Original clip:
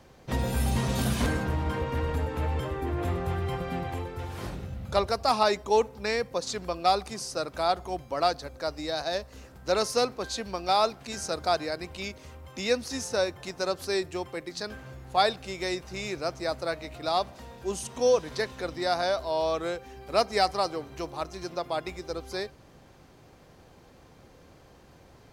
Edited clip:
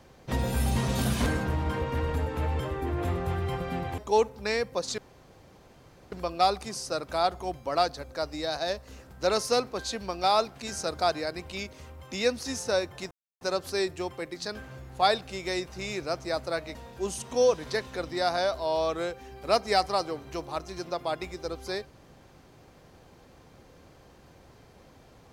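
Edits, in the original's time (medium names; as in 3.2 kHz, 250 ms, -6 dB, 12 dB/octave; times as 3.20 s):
3.98–5.57 s: delete
6.57 s: insert room tone 1.14 s
13.56 s: insert silence 0.30 s
16.90–17.40 s: delete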